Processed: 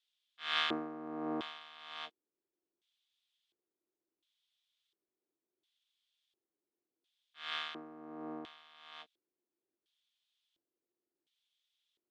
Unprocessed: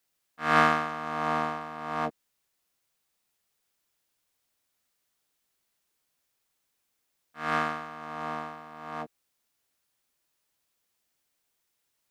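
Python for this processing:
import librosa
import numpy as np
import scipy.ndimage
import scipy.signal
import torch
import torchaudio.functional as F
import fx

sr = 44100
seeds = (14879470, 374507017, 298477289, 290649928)

y = fx.filter_lfo_bandpass(x, sr, shape='square', hz=0.71, low_hz=350.0, high_hz=3400.0, q=6.4)
y = y * 10.0 ** (8.0 / 20.0)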